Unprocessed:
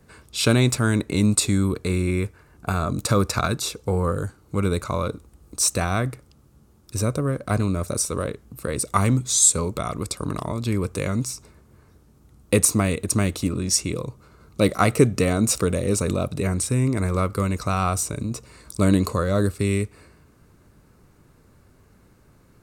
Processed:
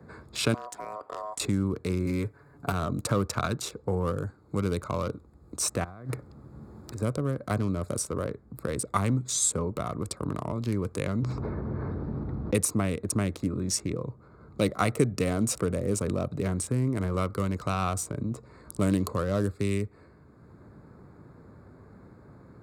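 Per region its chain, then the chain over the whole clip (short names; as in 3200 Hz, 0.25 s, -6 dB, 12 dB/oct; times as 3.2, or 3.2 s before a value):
0.54–1.4 compressor 5:1, threshold -24 dBFS + low shelf 350 Hz -4.5 dB + ring modulator 850 Hz
2.05–2.72 high shelf 11000 Hz +9 dB + comb 7.1 ms, depth 61%
5.84–7.02 block floating point 5-bit + negative-ratio compressor -31 dBFS, ratio -0.5
11.22–12.55 tape spacing loss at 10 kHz 44 dB + fast leveller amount 70%
whole clip: Wiener smoothing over 15 samples; HPF 75 Hz; three-band squash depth 40%; gain -5 dB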